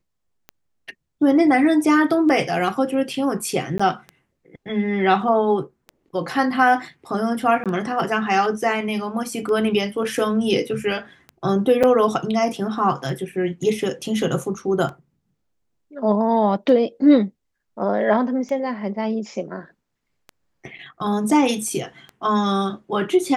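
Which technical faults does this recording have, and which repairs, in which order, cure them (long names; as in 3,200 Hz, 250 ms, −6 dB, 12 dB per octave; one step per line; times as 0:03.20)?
scratch tick 33 1/3 rpm −21 dBFS
0:03.78–0:03.79: drop-out 15 ms
0:07.64–0:07.66: drop-out 17 ms
0:11.83–0:11.84: drop-out 6.3 ms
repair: click removal
repair the gap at 0:03.78, 15 ms
repair the gap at 0:07.64, 17 ms
repair the gap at 0:11.83, 6.3 ms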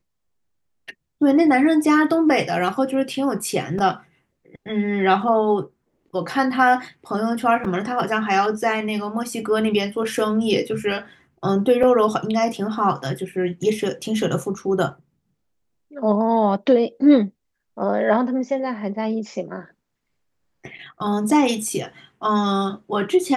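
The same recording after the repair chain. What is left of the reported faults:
none of them is left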